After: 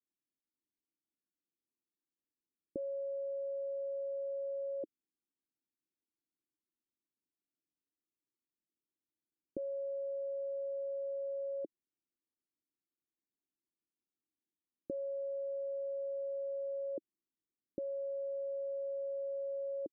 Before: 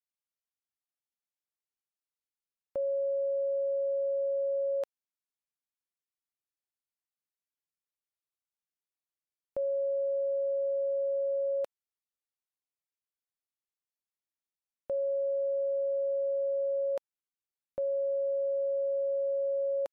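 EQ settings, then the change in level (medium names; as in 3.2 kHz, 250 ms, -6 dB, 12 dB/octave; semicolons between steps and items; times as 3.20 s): four-pole ladder low-pass 370 Hz, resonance 55%; peaking EQ 290 Hz +9 dB 2.1 oct; +5.5 dB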